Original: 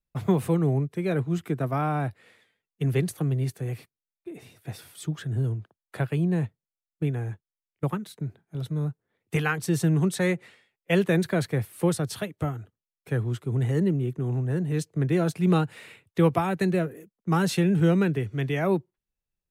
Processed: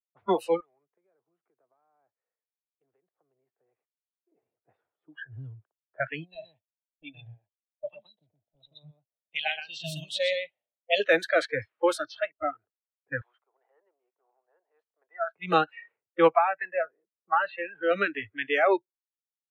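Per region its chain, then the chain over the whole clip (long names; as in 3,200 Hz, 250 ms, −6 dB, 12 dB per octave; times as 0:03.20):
0:00.60–0:04.32: high-pass filter 1,000 Hz 6 dB per octave + downward compressor 10 to 1, threshold −41 dBFS
0:06.23–0:11.00: running median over 3 samples + drawn EQ curve 110 Hz 0 dB, 290 Hz −5 dB, 410 Hz −16 dB, 610 Hz +3 dB, 1,400 Hz −21 dB, 3,300 Hz +7 dB, 6,200 Hz −1 dB, 13,000 Hz +7 dB + single-tap delay 121 ms −4 dB
0:13.21–0:15.35: high-pass filter 670 Hz 24 dB per octave + one half of a high-frequency compander encoder only
0:16.28–0:17.91: high-pass filter 310 Hz 6 dB per octave + high-frequency loss of the air 420 metres
whole clip: low-pass that shuts in the quiet parts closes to 550 Hz, open at −19 dBFS; noise reduction from a noise print of the clip's start 28 dB; three-way crossover with the lows and the highs turned down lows −22 dB, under 420 Hz, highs −14 dB, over 4,100 Hz; level +8 dB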